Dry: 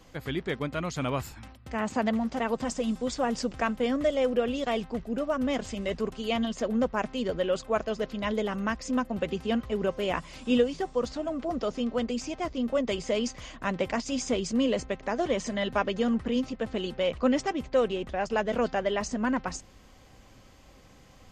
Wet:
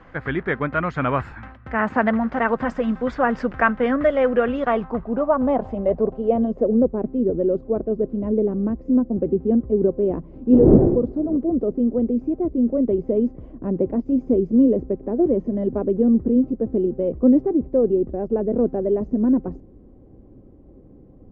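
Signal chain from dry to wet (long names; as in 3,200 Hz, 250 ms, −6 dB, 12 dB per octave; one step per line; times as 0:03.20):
0:10.52–0:11.36: wind on the microphone 510 Hz −24 dBFS
low-pass filter sweep 1,600 Hz → 360 Hz, 0:04.42–0:07.04
level +6.5 dB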